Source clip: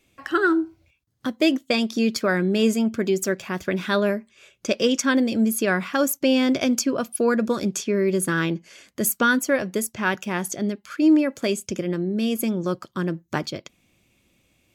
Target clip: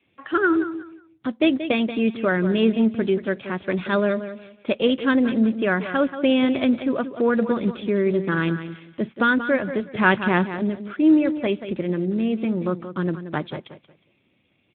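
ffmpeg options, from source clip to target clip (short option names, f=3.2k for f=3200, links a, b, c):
-filter_complex "[0:a]asettb=1/sr,asplit=3[a][b][c];[a]atrim=end=2.754[d];[b]atrim=start=2.75:end=3.39,asetpts=PTS-STARTPTS,afade=t=in:d=0.004:c=qsin,afade=t=out:st=0.636:d=0.004:c=qsin,agate=range=-22dB:threshold=-28dB:ratio=16:detection=peak[e];[c]atrim=start=3.386[f];[d][e]acrossfade=d=0.004:c1=hsin:c2=qsin[g];[g][f]acrossfade=d=0.004:c1=qsin:c2=hsin,asettb=1/sr,asplit=3[h][i][j];[h]atrim=end=12.074[k];[i]atrim=start=12.07:end=12.82,asetpts=PTS-STARTPTS,afade=t=in:d=0.004:c=qsin,afade=t=out:st=0.746:d=0.004:c=qsin,lowpass=f=2.8k:w=0.5412,lowpass=f=2.8k:w=1.3066[l];[j]atrim=start=12.816[m];[k][l]acrossfade=d=0.004:c1=hsin:c2=qsin[n];[n][m]acrossfade=d=0.004:c1=qsin:c2=hsin,adynamicequalizer=threshold=0.00251:dfrequency=130:dqfactor=7.2:tfrequency=130:tqfactor=7.2:attack=5:release=100:ratio=0.375:range=1.5:mode=boostabove:tftype=bell,asplit=3[o][p][q];[o]afade=t=out:st=9.93:d=0.02[r];[p]acontrast=65,afade=t=in:st=9.93:d=0.02,afade=t=out:st=10.47:d=0.02[s];[q]afade=t=in:st=10.47:d=0.02[t];[r][s][t]amix=inputs=3:normalize=0,aecho=1:1:181|362|543:0.282|0.0676|0.0162" -ar 8000 -c:a libspeex -b:a 11k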